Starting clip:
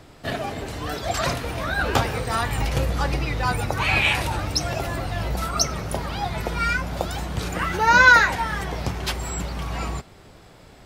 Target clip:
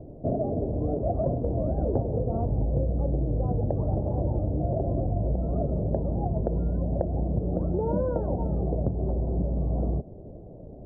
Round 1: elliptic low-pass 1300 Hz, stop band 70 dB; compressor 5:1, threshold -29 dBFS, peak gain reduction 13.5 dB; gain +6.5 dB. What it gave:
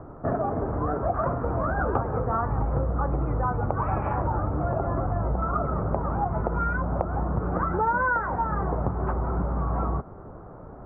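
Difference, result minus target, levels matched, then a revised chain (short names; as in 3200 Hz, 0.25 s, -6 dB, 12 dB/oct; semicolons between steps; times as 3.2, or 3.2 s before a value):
1000 Hz band +11.0 dB
elliptic low-pass 630 Hz, stop band 70 dB; compressor 5:1, threshold -29 dBFS, peak gain reduction 10 dB; gain +6.5 dB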